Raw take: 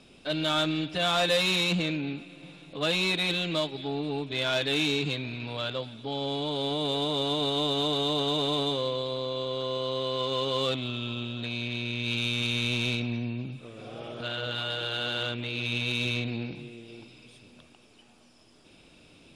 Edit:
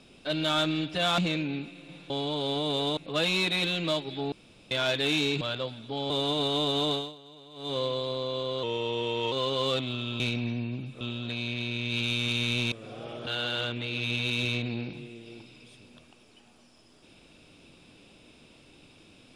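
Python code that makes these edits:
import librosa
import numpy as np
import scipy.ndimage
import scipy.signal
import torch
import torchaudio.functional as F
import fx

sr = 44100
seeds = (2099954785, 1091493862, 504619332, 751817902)

y = fx.edit(x, sr, fx.cut(start_s=1.18, length_s=0.54),
    fx.room_tone_fill(start_s=3.99, length_s=0.39),
    fx.cut(start_s=5.08, length_s=0.48),
    fx.move(start_s=6.25, length_s=0.87, to_s=2.64),
    fx.fade_down_up(start_s=7.95, length_s=0.83, db=-23.0, fade_s=0.26, curve='qua'),
    fx.speed_span(start_s=9.65, length_s=0.62, speed=0.9),
    fx.move(start_s=12.86, length_s=0.81, to_s=11.15),
    fx.cut(start_s=14.22, length_s=0.67), tone=tone)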